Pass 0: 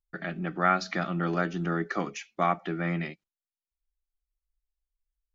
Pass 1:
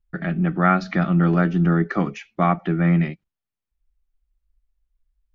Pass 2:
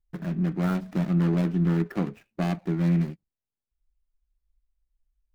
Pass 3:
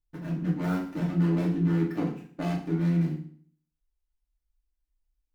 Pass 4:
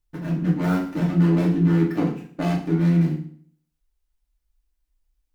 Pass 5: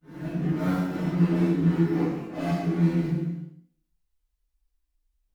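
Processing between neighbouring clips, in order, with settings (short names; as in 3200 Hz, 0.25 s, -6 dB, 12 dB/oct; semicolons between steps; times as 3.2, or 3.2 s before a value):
tone controls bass +11 dB, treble -12 dB; gain +5 dB
median filter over 41 samples; gain -4.5 dB
FDN reverb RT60 0.51 s, low-frequency decay 1.2×, high-frequency decay 0.95×, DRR -4 dB; gain -7.5 dB
band-limited delay 64 ms, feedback 52%, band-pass 1000 Hz, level -22 dB; gain +6.5 dB
phase scrambler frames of 0.2 s; non-linear reverb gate 0.39 s falling, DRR 2.5 dB; gain -5 dB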